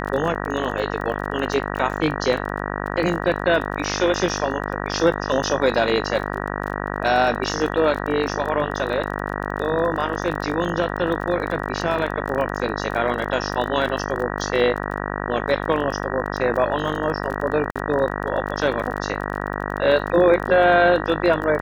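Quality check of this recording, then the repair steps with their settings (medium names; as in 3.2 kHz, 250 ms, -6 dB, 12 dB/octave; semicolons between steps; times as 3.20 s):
buzz 50 Hz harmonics 38 -27 dBFS
crackle 23 per s -28 dBFS
17.71–17.76 s: dropout 46 ms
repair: de-click; de-hum 50 Hz, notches 38; interpolate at 17.71 s, 46 ms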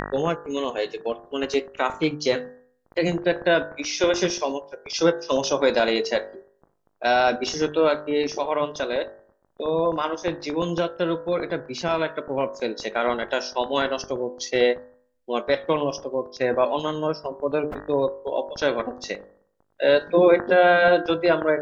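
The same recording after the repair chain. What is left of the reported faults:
nothing left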